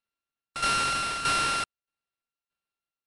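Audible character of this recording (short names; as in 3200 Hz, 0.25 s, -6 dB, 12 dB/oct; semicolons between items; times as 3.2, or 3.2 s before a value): a buzz of ramps at a fixed pitch in blocks of 32 samples; tremolo saw down 1.6 Hz, depth 70%; aliases and images of a low sample rate 6800 Hz, jitter 20%; MP3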